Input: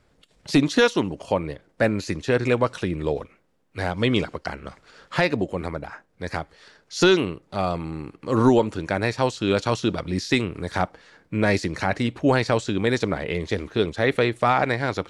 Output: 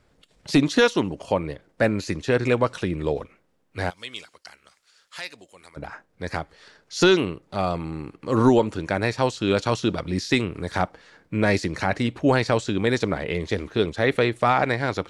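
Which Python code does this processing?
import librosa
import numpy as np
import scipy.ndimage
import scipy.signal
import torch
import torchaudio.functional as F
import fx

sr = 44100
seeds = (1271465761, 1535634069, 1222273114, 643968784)

y = fx.pre_emphasis(x, sr, coefficient=0.97, at=(3.89, 5.76), fade=0.02)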